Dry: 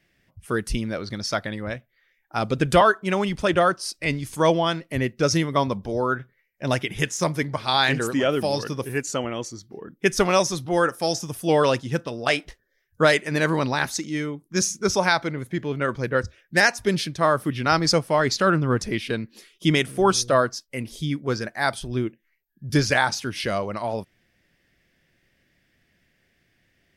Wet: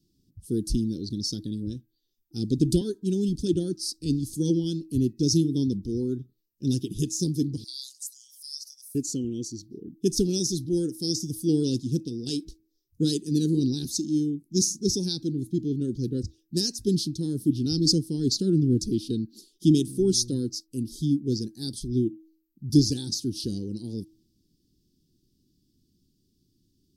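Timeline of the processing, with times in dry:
0:07.64–0:08.95: inverse Chebyshev high-pass filter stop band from 1,200 Hz, stop band 70 dB
whole clip: elliptic band-stop filter 300–4,300 Hz, stop band 40 dB; parametric band 430 Hz +9 dB 1.2 octaves; hum removal 320.3 Hz, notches 8

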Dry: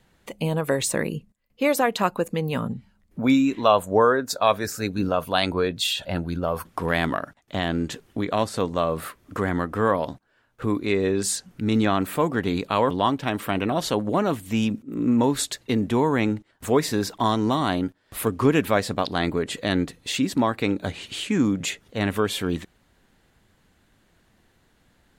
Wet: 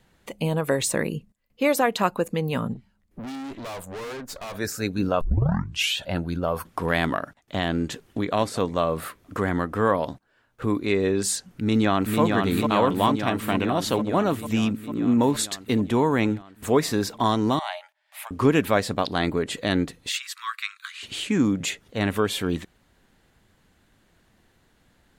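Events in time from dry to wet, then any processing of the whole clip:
0:02.74–0:04.55: tube saturation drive 33 dB, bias 0.75
0:05.21: tape start 0.77 s
0:07.93–0:08.35: delay throw 230 ms, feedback 45%, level −18 dB
0:11.48–0:12.21: delay throw 450 ms, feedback 75%, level −3 dB
0:17.59–0:18.31: Chebyshev high-pass with heavy ripple 590 Hz, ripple 9 dB
0:20.09–0:21.03: Butterworth high-pass 1,100 Hz 96 dB per octave

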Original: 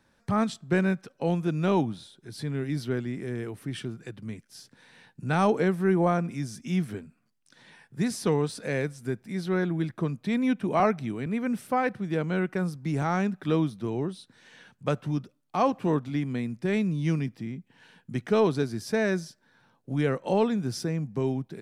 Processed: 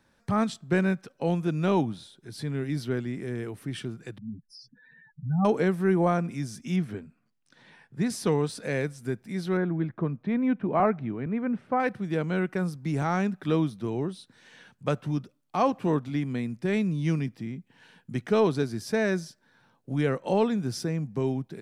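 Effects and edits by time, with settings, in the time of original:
0:04.18–0:05.45: expanding power law on the bin magnitudes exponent 3.8
0:06.76–0:08.10: low-pass filter 3,500 Hz 6 dB per octave
0:09.57–0:11.80: low-pass filter 1,800 Hz

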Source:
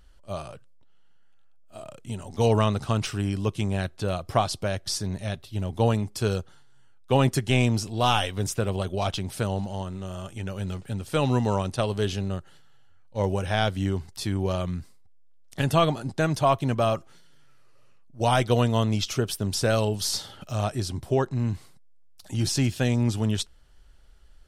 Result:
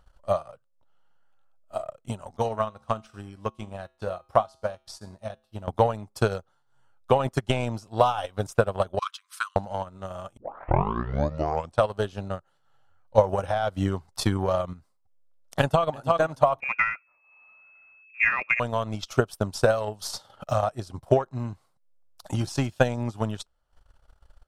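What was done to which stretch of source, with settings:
0:02.37–0:05.68: tuned comb filter 73 Hz, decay 0.5 s, harmonics odd, mix 70%
0:08.99–0:09.56: linear-phase brick-wall high-pass 990 Hz
0:10.37: tape start 1.46 s
0:13.18–0:14.73: clip gain +4.5 dB
0:15.60–0:16.07: delay throw 330 ms, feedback 25%, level −9 dB
0:16.60–0:18.60: voice inversion scrambler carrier 2,600 Hz
whole clip: flat-topped bell 850 Hz +10 dB; brickwall limiter −10 dBFS; transient designer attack +12 dB, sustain −11 dB; level −7.5 dB

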